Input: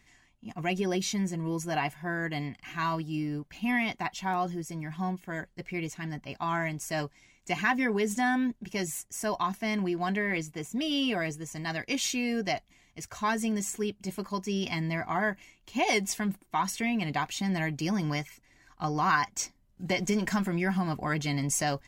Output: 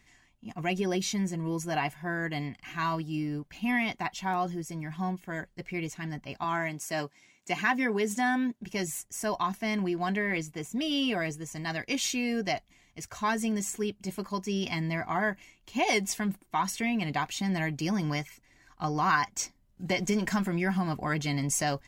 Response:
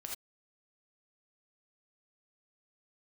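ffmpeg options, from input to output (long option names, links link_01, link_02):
-filter_complex "[0:a]asettb=1/sr,asplit=3[link_01][link_02][link_03];[link_01]atrim=end=6.444[link_04];[link_02]atrim=start=6.44:end=8.6,asetpts=PTS-STARTPTS,afade=type=in:duration=0.004:curve=qsin,afade=type=out:start_time=2.156:duration=0.004:curve=qsin,highpass=170[link_05];[link_03]atrim=start=8.596[link_06];[link_04][link_05]acrossfade=duration=0.004:curve1=hsin:curve2=qsin[link_07];[link_07][link_06]acrossfade=duration=0.004:curve1=qsin:curve2=hsin"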